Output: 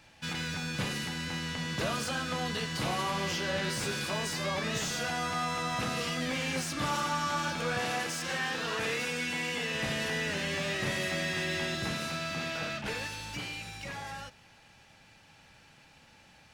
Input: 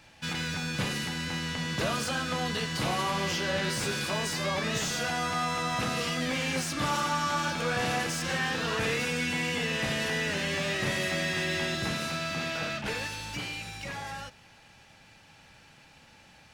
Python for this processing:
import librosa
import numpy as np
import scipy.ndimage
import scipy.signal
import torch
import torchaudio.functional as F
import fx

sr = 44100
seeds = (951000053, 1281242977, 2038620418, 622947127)

y = fx.low_shelf(x, sr, hz=150.0, db=-11.0, at=(7.79, 9.75))
y = y * librosa.db_to_amplitude(-2.5)